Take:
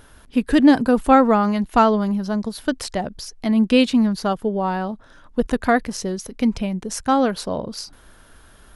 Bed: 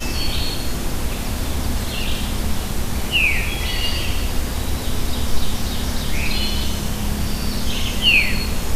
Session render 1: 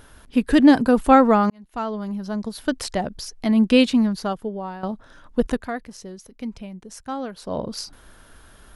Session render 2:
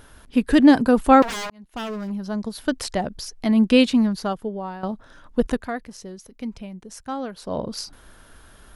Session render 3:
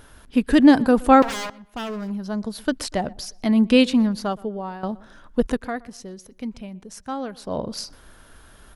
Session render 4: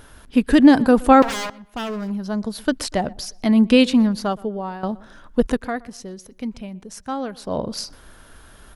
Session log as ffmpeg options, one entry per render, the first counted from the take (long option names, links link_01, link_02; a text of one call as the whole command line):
ffmpeg -i in.wav -filter_complex "[0:a]asplit=5[link_01][link_02][link_03][link_04][link_05];[link_01]atrim=end=1.5,asetpts=PTS-STARTPTS,afade=type=out:start_time=1.496:duration=0.004:curve=hsin[link_06];[link_02]atrim=start=1.5:end=4.83,asetpts=PTS-STARTPTS,afade=type=in:duration=1.38,afade=type=out:start_time=2.31:duration=1.02:silence=0.211349[link_07];[link_03]atrim=start=4.83:end=5.66,asetpts=PTS-STARTPTS,afade=type=in:duration=0.004:curve=hsin:silence=0.211349,afade=type=out:start_time=0.65:duration=0.18:silence=0.251189[link_08];[link_04]atrim=start=5.66:end=7.41,asetpts=PTS-STARTPTS,volume=-12dB[link_09];[link_05]atrim=start=7.41,asetpts=PTS-STARTPTS,afade=type=in:duration=0.18:silence=0.251189[link_10];[link_06][link_07][link_08][link_09][link_10]concat=n=5:v=0:a=1" out.wav
ffmpeg -i in.wav -filter_complex "[0:a]asettb=1/sr,asplit=3[link_01][link_02][link_03];[link_01]atrim=end=1.224[link_04];[link_02]atrim=start=1.22:end=2.1,asetpts=PTS-STARTPTS,afade=type=in:duration=0.004:curve=qsin,afade=type=out:start_time=0.876:duration=0.004:curve=qsin,aeval=exprs='0.0596*(abs(mod(val(0)/0.0596+3,4)-2)-1)':channel_layout=same[link_05];[link_03]atrim=start=2.096[link_06];[link_04][link_05]acrossfade=duration=0.004:curve1=hsin:curve2=qsin[link_07];[link_07][link_06]acrossfade=duration=0.004:curve1=qsin:curve2=hsin" out.wav
ffmpeg -i in.wav -filter_complex "[0:a]asplit=2[link_01][link_02];[link_02]adelay=121,lowpass=frequency=2300:poles=1,volume=-22dB,asplit=2[link_03][link_04];[link_04]adelay=121,lowpass=frequency=2300:poles=1,volume=0.4,asplit=2[link_05][link_06];[link_06]adelay=121,lowpass=frequency=2300:poles=1,volume=0.4[link_07];[link_01][link_03][link_05][link_07]amix=inputs=4:normalize=0" out.wav
ffmpeg -i in.wav -af "volume=2.5dB,alimiter=limit=-3dB:level=0:latency=1" out.wav